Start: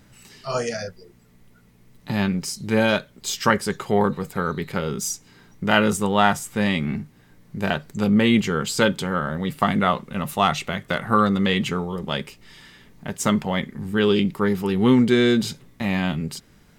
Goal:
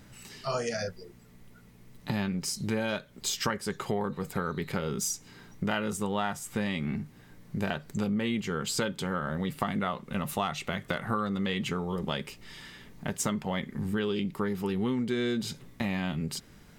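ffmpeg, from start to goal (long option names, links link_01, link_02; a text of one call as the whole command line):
ffmpeg -i in.wav -af "acompressor=threshold=-28dB:ratio=5" out.wav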